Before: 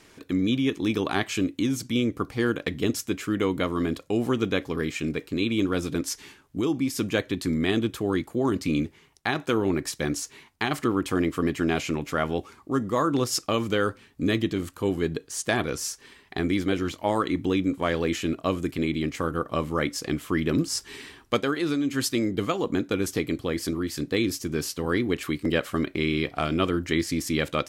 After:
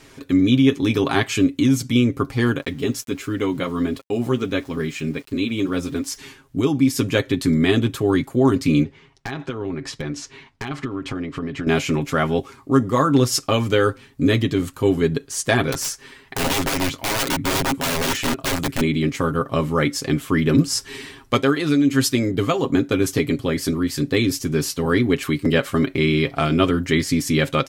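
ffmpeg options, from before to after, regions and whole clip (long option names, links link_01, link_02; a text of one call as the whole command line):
ffmpeg -i in.wav -filter_complex "[0:a]asettb=1/sr,asplit=3[link_01][link_02][link_03];[link_01]atrim=end=2.624[link_04];[link_02]atrim=start=2.62:end=6.16,asetpts=PTS-STARTPTS,afade=type=in:duration=0.004:curve=qsin,afade=type=out:start_time=3.536:duration=0.004:curve=qsin,flanger=delay=2.6:depth=3.2:regen=-54:speed=1.5:shape=triangular,aeval=exprs='val(0)*gte(abs(val(0)),0.00299)':channel_layout=same[link_05];[link_03]atrim=start=6.156[link_06];[link_04][link_05]acrossfade=duration=0.004:curve1=hsin:curve2=qsin[link_07];[link_07][link_06]acrossfade=duration=0.004:curve1=qsin:curve2=hsin,asettb=1/sr,asplit=3[link_08][link_09][link_10];[link_08]atrim=end=8.834[link_11];[link_09]atrim=start=8.83:end=11.67,asetpts=PTS-STARTPTS,afade=type=in:duration=0.004:curve=qsin,afade=type=out:start_time=2.836:duration=0.004:curve=qsin,lowpass=4400,acompressor=threshold=-30dB:ratio=8:attack=3.2:release=140:knee=1:detection=peak,aeval=exprs='0.0708*(abs(mod(val(0)/0.0708+3,4)-2)-1)':channel_layout=same[link_12];[link_10]atrim=start=11.666[link_13];[link_11][link_12]acrossfade=duration=0.004:curve1=hsin:curve2=qsin[link_14];[link_14][link_13]acrossfade=duration=0.004:curve1=qsin:curve2=hsin,asettb=1/sr,asplit=3[link_15][link_16][link_17];[link_15]atrim=end=15.724[link_18];[link_16]atrim=start=15.72:end=18.81,asetpts=PTS-STARTPTS,afade=type=in:duration=0.004:curve=qsin,afade=type=out:start_time=3.086:duration=0.004:curve=qsin,equalizer=frequency=1400:width=1.3:gain=3,aeval=exprs='(mod(13.3*val(0)+1,2)-1)/13.3':channel_layout=same[link_19];[link_17]atrim=start=18.806[link_20];[link_18][link_19]acrossfade=duration=0.004:curve1=hsin:curve2=qsin[link_21];[link_21][link_20]acrossfade=duration=0.004:curve1=qsin:curve2=hsin,lowshelf=frequency=140:gain=5.5,aecho=1:1:7.4:0.59,volume=4.5dB" out.wav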